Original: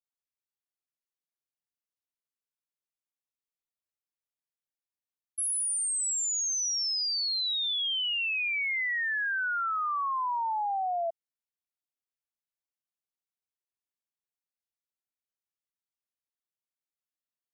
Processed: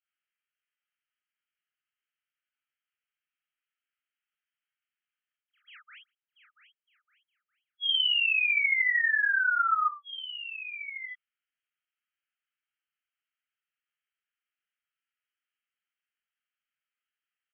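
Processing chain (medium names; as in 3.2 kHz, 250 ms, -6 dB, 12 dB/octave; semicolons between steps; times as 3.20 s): saturation -35 dBFS, distortion -13 dB; brick-wall FIR band-pass 1.2–3.3 kHz; early reflections 23 ms -7 dB, 36 ms -4 dB, 48 ms -3.5 dB; trim +8 dB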